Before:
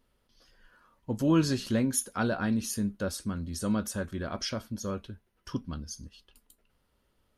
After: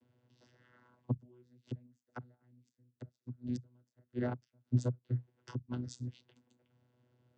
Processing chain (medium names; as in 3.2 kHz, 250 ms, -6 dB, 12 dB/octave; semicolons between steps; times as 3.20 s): inverted gate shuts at -25 dBFS, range -42 dB; vocoder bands 16, saw 123 Hz; band-stop 1.2 kHz, Q 7.4; trim +6 dB